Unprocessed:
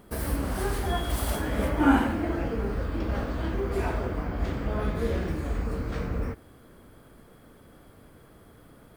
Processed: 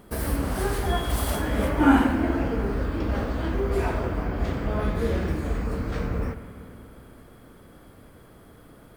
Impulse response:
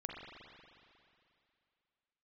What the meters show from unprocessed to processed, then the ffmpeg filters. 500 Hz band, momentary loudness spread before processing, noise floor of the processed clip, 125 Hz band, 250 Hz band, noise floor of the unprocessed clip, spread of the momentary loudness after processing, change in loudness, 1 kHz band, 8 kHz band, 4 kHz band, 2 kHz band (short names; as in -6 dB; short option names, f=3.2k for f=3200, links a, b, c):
+3.0 dB, 8 LU, -50 dBFS, +2.5 dB, +3.5 dB, -54 dBFS, 9 LU, +3.0 dB, +3.0 dB, +2.5 dB, +2.5 dB, +3.0 dB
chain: -filter_complex "[0:a]asplit=2[a][b];[1:a]atrim=start_sample=2205,asetrate=34398,aresample=44100[c];[b][c]afir=irnorm=-1:irlink=0,volume=-7dB[d];[a][d]amix=inputs=2:normalize=0"